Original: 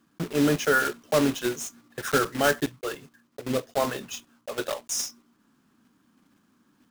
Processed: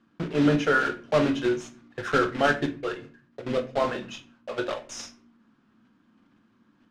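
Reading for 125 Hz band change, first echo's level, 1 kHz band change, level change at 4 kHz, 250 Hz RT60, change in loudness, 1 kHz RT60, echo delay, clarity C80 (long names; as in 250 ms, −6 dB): +2.0 dB, no echo audible, +1.0 dB, −3.0 dB, 0.75 s, +0.5 dB, 0.35 s, no echo audible, 19.5 dB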